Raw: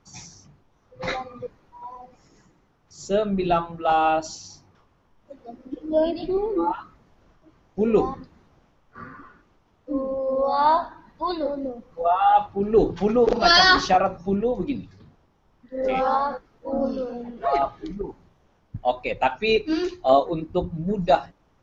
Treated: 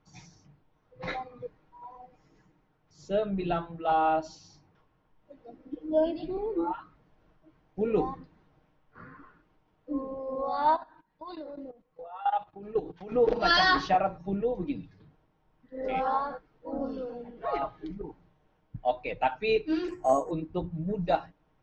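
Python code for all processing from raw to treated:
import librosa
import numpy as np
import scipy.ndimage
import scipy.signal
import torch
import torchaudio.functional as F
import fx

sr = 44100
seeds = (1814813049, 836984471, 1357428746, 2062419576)

y = fx.chain(x, sr, fx.low_shelf(hz=330.0, db=-6.0),
    fx.level_steps(step_db=17), at=(10.76, 13.12))
y = fx.chain(y, sr, fx.lowpass(hz=2200.0, slope=24),
    fx.resample_bad(factor=6, down='filtered', up='hold'),
    fx.band_squash(depth_pct=40), at=(19.88, 20.31))
y = scipy.signal.sosfilt(scipy.signal.butter(2, 3800.0, 'lowpass', fs=sr, output='sos'), y)
y = fx.notch(y, sr, hz=1200.0, q=17.0)
y = y + 0.42 * np.pad(y, (int(6.5 * sr / 1000.0), 0))[:len(y)]
y = F.gain(torch.from_numpy(y), -7.0).numpy()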